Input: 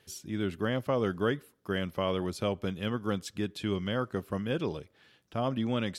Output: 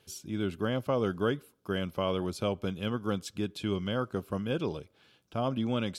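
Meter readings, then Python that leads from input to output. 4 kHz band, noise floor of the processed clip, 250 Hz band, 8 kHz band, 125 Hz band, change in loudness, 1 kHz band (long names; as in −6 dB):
0.0 dB, −67 dBFS, 0.0 dB, 0.0 dB, 0.0 dB, 0.0 dB, 0.0 dB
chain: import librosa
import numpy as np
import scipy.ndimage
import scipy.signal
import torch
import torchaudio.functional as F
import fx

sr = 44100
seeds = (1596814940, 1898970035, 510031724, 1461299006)

y = fx.peak_eq(x, sr, hz=1900.0, db=-7.5, octaves=0.2)
y = fx.notch(y, sr, hz=1800.0, q=12.0)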